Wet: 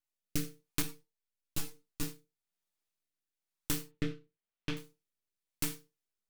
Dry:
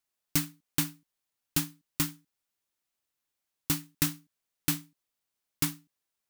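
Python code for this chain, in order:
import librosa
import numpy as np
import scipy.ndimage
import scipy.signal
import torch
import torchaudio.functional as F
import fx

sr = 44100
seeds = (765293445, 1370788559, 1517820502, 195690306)

y = fx.lowpass(x, sr, hz=3400.0, slope=24, at=(3.81, 4.77))
y = np.maximum(y, 0.0)
y = fx.rotary(y, sr, hz=1.0)
y = fx.rev_gated(y, sr, seeds[0], gate_ms=120, shape='falling', drr_db=5.0)
y = fx.ensemble(y, sr, at=(0.82, 2.03))
y = y * librosa.db_to_amplitude(-1.0)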